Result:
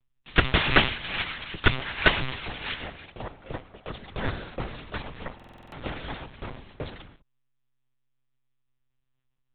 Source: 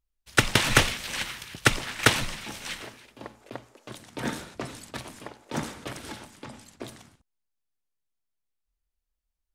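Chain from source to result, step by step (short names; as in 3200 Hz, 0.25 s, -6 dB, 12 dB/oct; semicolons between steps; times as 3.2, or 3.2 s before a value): monotone LPC vocoder at 8 kHz 130 Hz; in parallel at +2.5 dB: compressor, threshold -41 dBFS, peak gain reduction 25 dB; on the sum: stuck buffer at 5.35, samples 2048, times 7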